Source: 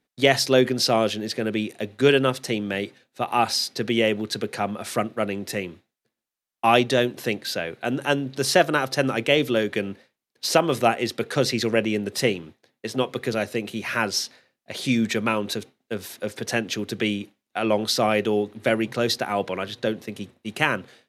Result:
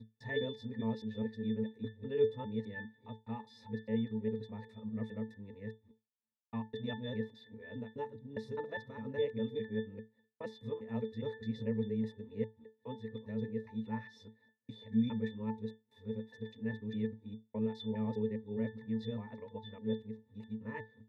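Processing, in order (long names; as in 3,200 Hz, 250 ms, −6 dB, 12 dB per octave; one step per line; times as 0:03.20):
reversed piece by piece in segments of 204 ms
resonances in every octave A, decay 0.22 s
level −3 dB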